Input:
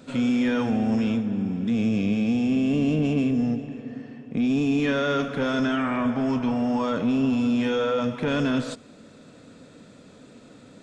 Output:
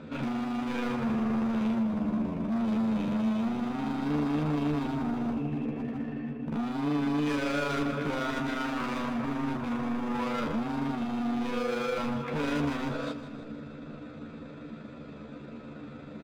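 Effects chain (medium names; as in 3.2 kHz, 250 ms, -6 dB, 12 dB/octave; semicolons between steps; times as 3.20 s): low-pass 2.4 kHz 12 dB/octave; in parallel at +1 dB: compression, threshold -32 dBFS, peak gain reduction 12 dB; on the sum: hard clipper -27 dBFS, distortion -7 dB; granular stretch 1.5×, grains 79 ms; doubling 14 ms -6 dB; on a send: two-band feedback delay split 450 Hz, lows 491 ms, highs 158 ms, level -12.5 dB; on the sum: trim -1.5 dB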